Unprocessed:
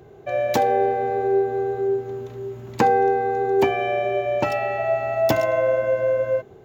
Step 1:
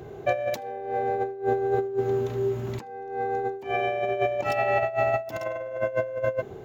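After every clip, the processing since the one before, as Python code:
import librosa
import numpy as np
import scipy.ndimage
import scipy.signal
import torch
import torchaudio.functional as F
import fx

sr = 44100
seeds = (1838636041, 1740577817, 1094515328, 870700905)

y = fx.over_compress(x, sr, threshold_db=-26.0, ratio=-0.5)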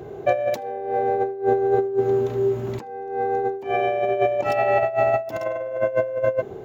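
y = fx.peak_eq(x, sr, hz=460.0, db=5.5, octaves=2.6)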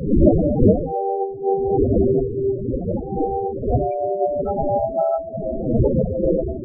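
y = fx.dmg_wind(x, sr, seeds[0], corner_hz=550.0, level_db=-17.0)
y = fx.spec_topn(y, sr, count=8)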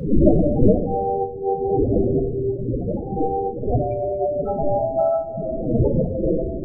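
y = fx.room_shoebox(x, sr, seeds[1], volume_m3=490.0, walls='mixed', distance_m=0.48)
y = F.gain(torch.from_numpy(y), -1.5).numpy()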